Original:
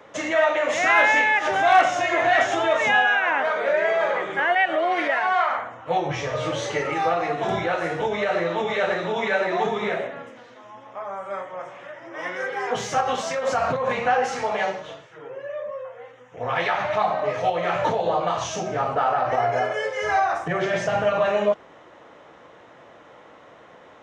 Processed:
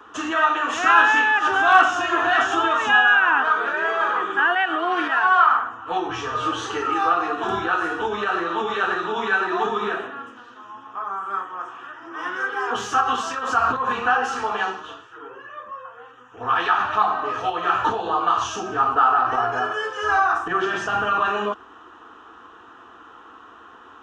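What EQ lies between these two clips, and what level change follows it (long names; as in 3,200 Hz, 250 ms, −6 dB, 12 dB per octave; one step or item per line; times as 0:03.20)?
low-shelf EQ 330 Hz +5.5 dB
flat-topped bell 1,900 Hz +12 dB
phaser with its sweep stopped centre 570 Hz, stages 6
0.0 dB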